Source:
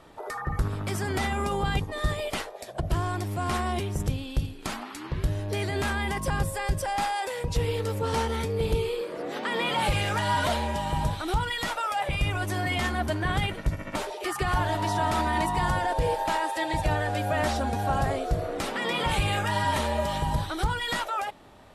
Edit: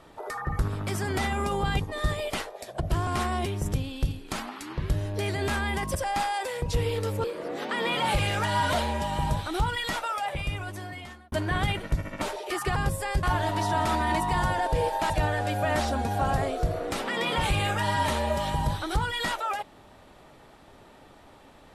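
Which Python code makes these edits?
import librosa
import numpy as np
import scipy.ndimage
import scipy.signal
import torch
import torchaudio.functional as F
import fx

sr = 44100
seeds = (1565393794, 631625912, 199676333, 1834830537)

y = fx.edit(x, sr, fx.cut(start_s=3.07, length_s=0.34),
    fx.move(start_s=6.29, length_s=0.48, to_s=14.49),
    fx.cut(start_s=8.06, length_s=0.92),
    fx.fade_out_span(start_s=11.65, length_s=1.41),
    fx.cut(start_s=16.36, length_s=0.42), tone=tone)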